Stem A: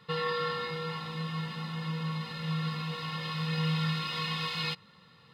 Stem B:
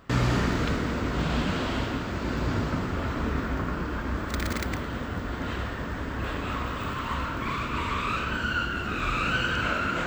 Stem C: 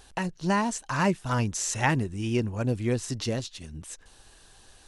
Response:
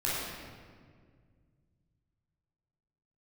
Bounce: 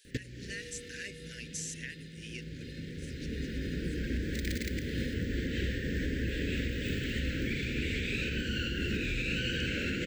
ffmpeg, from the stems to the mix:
-filter_complex "[0:a]asoftclip=type=tanh:threshold=0.0141,adelay=400,volume=0.422[s0];[1:a]bandreject=f=50:t=h:w=6,bandreject=f=100:t=h:w=6,adelay=50,volume=1.41[s1];[2:a]highpass=980,alimiter=limit=0.119:level=0:latency=1:release=444,volume=0.473,afade=t=out:st=2.39:d=0.38:silence=0.251189,asplit=2[s2][s3];[s3]apad=whole_len=446044[s4];[s1][s4]sidechaincompress=threshold=0.00158:ratio=16:attack=5.8:release=1450[s5];[s0][s5][s2]amix=inputs=3:normalize=0,asuperstop=centerf=930:order=12:qfactor=0.82,alimiter=limit=0.0708:level=0:latency=1:release=298"

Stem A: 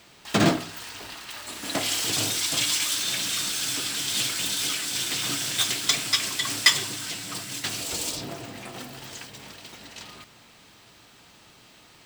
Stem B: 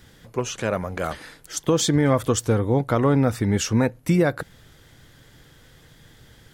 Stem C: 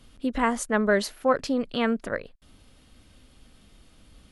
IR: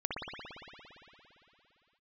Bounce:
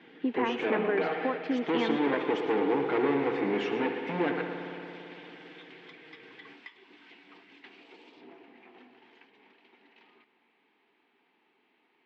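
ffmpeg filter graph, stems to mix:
-filter_complex "[0:a]acompressor=threshold=0.0398:ratio=6,volume=0.168[s0];[1:a]equalizer=f=980:w=4.5:g=-7,aecho=1:1:6.4:0.84,volume=14.1,asoftclip=hard,volume=0.0708,volume=0.531,asplit=3[s1][s2][s3];[s2]volume=0.473[s4];[s3]volume=0.376[s5];[2:a]acompressor=threshold=0.0398:ratio=6,volume=1.06[s6];[3:a]atrim=start_sample=2205[s7];[s4][s7]afir=irnorm=-1:irlink=0[s8];[s5]aecho=0:1:112:1[s9];[s0][s1][s6][s8][s9]amix=inputs=5:normalize=0,highpass=f=240:w=0.5412,highpass=f=240:w=1.3066,equalizer=f=250:t=q:w=4:g=4,equalizer=f=400:t=q:w=4:g=8,equalizer=f=590:t=q:w=4:g=-9,equalizer=f=850:t=q:w=4:g=5,equalizer=f=1300:t=q:w=4:g=-5,equalizer=f=2200:t=q:w=4:g=4,lowpass=f=2800:w=0.5412,lowpass=f=2800:w=1.3066"

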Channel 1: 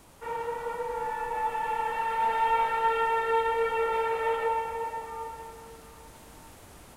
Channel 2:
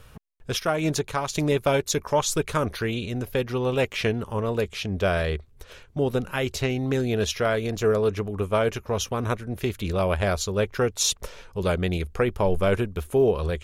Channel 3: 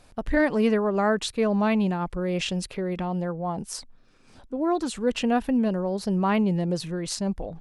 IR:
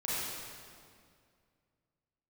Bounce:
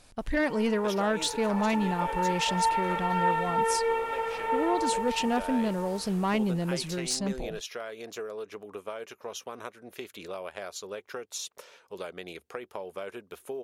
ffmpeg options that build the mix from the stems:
-filter_complex "[0:a]dynaudnorm=f=380:g=7:m=3.76,adelay=200,volume=0.299,asplit=2[s0][s1];[s1]volume=0.266[s2];[1:a]adelay=350,volume=0.422[s3];[2:a]equalizer=f=7800:t=o:w=2.9:g=7,asoftclip=type=tanh:threshold=0.158,volume=0.668[s4];[s0][s3]amix=inputs=2:normalize=0,highpass=380,acompressor=threshold=0.02:ratio=6,volume=1[s5];[3:a]atrim=start_sample=2205[s6];[s2][s6]afir=irnorm=-1:irlink=0[s7];[s4][s5][s7]amix=inputs=3:normalize=0"

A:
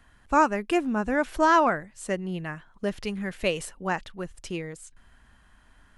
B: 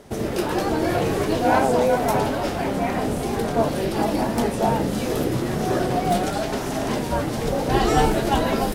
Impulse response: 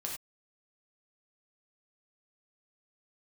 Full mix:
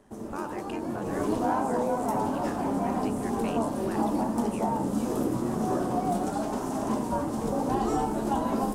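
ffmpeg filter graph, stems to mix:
-filter_complex "[0:a]alimiter=limit=0.0891:level=0:latency=1,tremolo=f=90:d=0.919,volume=0.596[s0];[1:a]equalizer=f=250:t=o:w=1:g=11,equalizer=f=1000:t=o:w=1:g=11,equalizer=f=2000:t=o:w=1:g=-6,equalizer=f=4000:t=o:w=1:g=-5,equalizer=f=8000:t=o:w=1:g=7,volume=0.178,afade=t=in:st=1:d=0.27:silence=0.398107,asplit=2[s1][s2];[s2]volume=0.631[s3];[2:a]atrim=start_sample=2205[s4];[s3][s4]afir=irnorm=-1:irlink=0[s5];[s0][s1][s5]amix=inputs=3:normalize=0,alimiter=limit=0.141:level=0:latency=1:release=323"

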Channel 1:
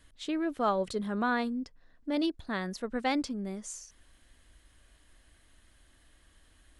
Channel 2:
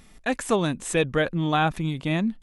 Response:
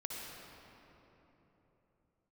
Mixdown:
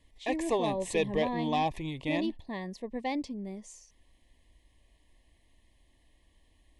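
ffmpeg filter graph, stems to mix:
-filter_complex "[0:a]volume=0.75[s0];[1:a]agate=range=0.0224:threshold=0.00891:ratio=3:detection=peak,equalizer=f=190:w=1.8:g=-14.5,volume=0.75[s1];[s0][s1]amix=inputs=2:normalize=0,highshelf=f=4500:g=-8.5,asoftclip=type=tanh:threshold=0.126,asuperstop=centerf=1400:order=8:qfactor=2.1"

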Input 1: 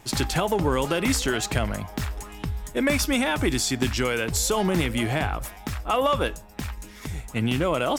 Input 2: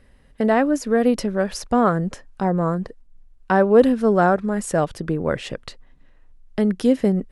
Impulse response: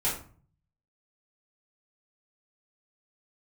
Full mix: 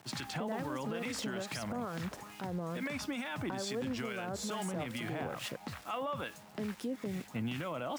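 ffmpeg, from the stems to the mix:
-filter_complex "[0:a]aemphasis=mode=reproduction:type=50fm,acrusher=bits=7:mix=0:aa=0.000001,equalizer=f=400:w=1.9:g=-7.5,volume=0.631[s0];[1:a]acompressor=threshold=0.0398:ratio=3,aeval=exprs='val(0)*gte(abs(val(0)),0.00944)':c=same,volume=0.794[s1];[s0][s1]amix=inputs=2:normalize=0,highpass=f=120:w=0.5412,highpass=f=120:w=1.3066,acrossover=split=1200[s2][s3];[s2]aeval=exprs='val(0)*(1-0.5/2+0.5/2*cos(2*PI*2.3*n/s))':c=same[s4];[s3]aeval=exprs='val(0)*(1-0.5/2-0.5/2*cos(2*PI*2.3*n/s))':c=same[s5];[s4][s5]amix=inputs=2:normalize=0,alimiter=level_in=1.78:limit=0.0631:level=0:latency=1:release=73,volume=0.562"

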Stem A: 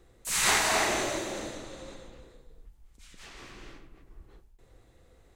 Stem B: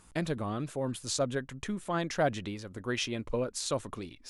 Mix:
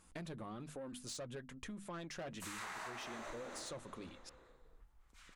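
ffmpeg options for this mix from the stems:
-filter_complex "[0:a]acompressor=threshold=0.0282:ratio=6,equalizer=f=1200:t=o:w=1.8:g=13,adelay=2150,volume=0.631,afade=t=out:st=3.54:d=0.41:silence=0.446684[s0];[1:a]bandreject=f=50:t=h:w=6,bandreject=f=100:t=h:w=6,bandreject=f=150:t=h:w=6,bandreject=f=200:t=h:w=6,bandreject=f=250:t=h:w=6,flanger=delay=3.7:depth=2:regen=-51:speed=1.2:shape=sinusoidal,asoftclip=type=tanh:threshold=0.0237,volume=0.75,asplit=2[s1][s2];[s2]apad=whole_len=330959[s3];[s0][s3]sidechaincompress=threshold=0.00398:ratio=8:attack=16:release=1160[s4];[s4][s1]amix=inputs=2:normalize=0,acompressor=threshold=0.00631:ratio=5"

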